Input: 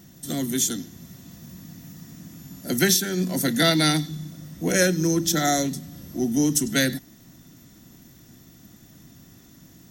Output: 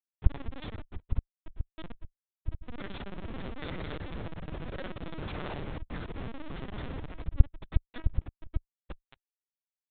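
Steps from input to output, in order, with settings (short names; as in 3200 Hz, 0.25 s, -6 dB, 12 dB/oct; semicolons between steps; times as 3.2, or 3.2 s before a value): in parallel at +1 dB: compressor 8:1, threshold -34 dBFS, peak gain reduction 18.5 dB; on the sum: speakerphone echo 90 ms, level -28 dB; grains 42 ms, grains 18/s, spray 16 ms; on a send: echo with dull and thin repeats by turns 0.583 s, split 950 Hz, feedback 69%, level -5.5 dB; on the sum: Schmitt trigger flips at -27 dBFS; LPC vocoder at 8 kHz pitch kept; gain -7.5 dB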